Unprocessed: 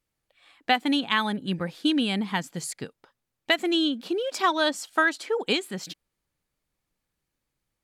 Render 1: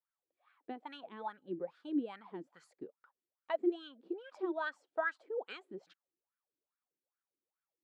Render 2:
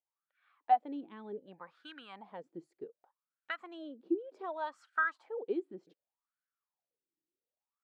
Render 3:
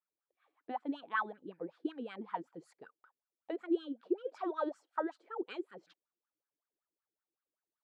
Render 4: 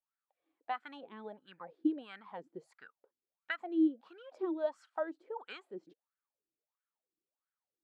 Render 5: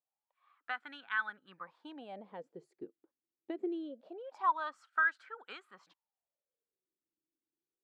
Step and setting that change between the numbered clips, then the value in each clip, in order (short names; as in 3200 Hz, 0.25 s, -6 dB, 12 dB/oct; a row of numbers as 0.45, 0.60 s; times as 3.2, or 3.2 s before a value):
wah, rate: 2.4, 0.66, 5.3, 1.5, 0.24 Hz